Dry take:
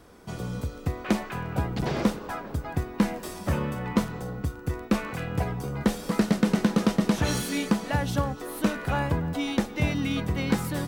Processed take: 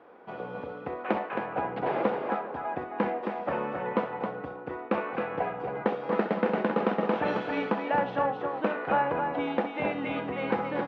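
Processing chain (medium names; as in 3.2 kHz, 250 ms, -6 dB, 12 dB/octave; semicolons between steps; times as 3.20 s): cabinet simulation 350–2500 Hz, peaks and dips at 510 Hz +5 dB, 810 Hz +6 dB, 2 kHz -3 dB; loudspeakers at several distances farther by 22 m -11 dB, 92 m -6 dB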